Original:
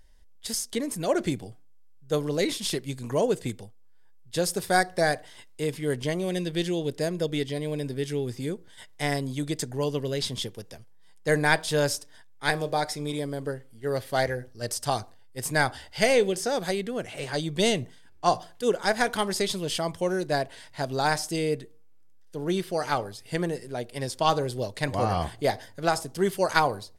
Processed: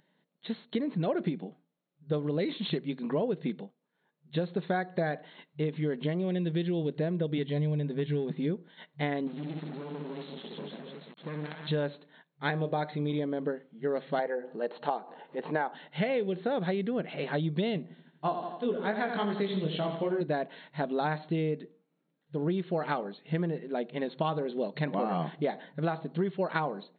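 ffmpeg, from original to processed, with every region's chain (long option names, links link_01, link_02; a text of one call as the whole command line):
ffmpeg -i in.wav -filter_complex "[0:a]asettb=1/sr,asplit=3[link_01][link_02][link_03];[link_01]atrim=end=7.384[link_04];[link_02]atrim=start=7.38:end=8.31,asetpts=PTS-STARTPTS,afade=type=in:duration=0.004:curve=qsin,afade=type=out:start_time=0.926:duration=0.004:curve=qsin,lowshelf=frequency=150:width_type=q:width=1.5:gain=11.5,asoftclip=type=hard:threshold=-20dB,asuperstop=centerf=1300:order=4:qfactor=7.9[link_05];[link_03]atrim=start=8.306[link_06];[link_04][link_05]acrossfade=duration=0.004:curve1=hsin:curve2=qsin[link_07];[link_07][link_06]acrossfade=duration=0.004:curve1=qsin:curve2=hsin,asettb=1/sr,asplit=3[link_08][link_09][link_10];[link_08]atrim=end=9.274[link_11];[link_09]atrim=start=9.27:end=11.67,asetpts=PTS-STARTPTS,afade=type=in:duration=0.004:curve=qsin,afade=type=out:start_time=2.396:duration=0.004:curve=qsin,aecho=1:1:60|150|285|487.5|791.2:0.631|0.398|0.251|0.158|0.1,atrim=end_sample=105840,acompressor=threshold=-32dB:ratio=8:attack=3.2:release=140:knee=1:detection=peak,acrusher=bits=5:dc=4:mix=0:aa=0.000001[link_12];[link_10]atrim=start=11.666[link_13];[link_11][link_12]acrossfade=duration=0.004:curve1=hsin:curve2=qsin[link_14];[link_14][link_13]acrossfade=duration=0.004:curve1=qsin:curve2=hsin,asettb=1/sr,asplit=3[link_15][link_16][link_17];[link_15]atrim=end=14.194[link_18];[link_16]atrim=start=14.19:end=15.75,asetpts=PTS-STARTPTS,afade=type=in:duration=0.004:curve=qsin,afade=type=out:start_time=1.556:duration=0.004:curve=qsin,highpass=300,equalizer=frequency=470:width_type=q:width=4:gain=5,equalizer=frequency=860:width_type=q:width=4:gain=8,equalizer=frequency=2200:width_type=q:width=4:gain=-5,equalizer=frequency=3600:width_type=q:width=4:gain=-6,lowpass=frequency=4000:width=0.5412,lowpass=frequency=4000:width=1.3066,acompressor=mode=upward:threshold=-31dB:ratio=2.5:attack=3.2:release=140:knee=2.83:detection=peak[link_19];[link_17]atrim=start=15.746[link_20];[link_18][link_19]acrossfade=duration=0.004:curve1=hsin:curve2=qsin[link_21];[link_21][link_20]acrossfade=duration=0.004:curve1=qsin:curve2=hsin,asettb=1/sr,asplit=3[link_22][link_23][link_24];[link_22]atrim=end=17.824[link_25];[link_23]atrim=start=17.82:end=20.21,asetpts=PTS-STARTPTS,afade=type=in:duration=0.004:curve=qsin,afade=type=out:start_time=2.386:duration=0.004:curve=qsin,flanger=delay=18.5:depth=3:speed=2.6,aecho=1:1:83|166|249|332|415|498:0.376|0.192|0.0978|0.0499|0.0254|0.013,atrim=end_sample=105399[link_26];[link_24]atrim=start=20.206[link_27];[link_25][link_26]acrossfade=duration=0.004:curve1=hsin:curve2=qsin[link_28];[link_28][link_27]acrossfade=duration=0.004:curve1=qsin:curve2=hsin,aemphasis=mode=reproduction:type=bsi,afftfilt=real='re*between(b*sr/4096,140,4300)':imag='im*between(b*sr/4096,140,4300)':win_size=4096:overlap=0.75,acompressor=threshold=-26dB:ratio=10" out.wav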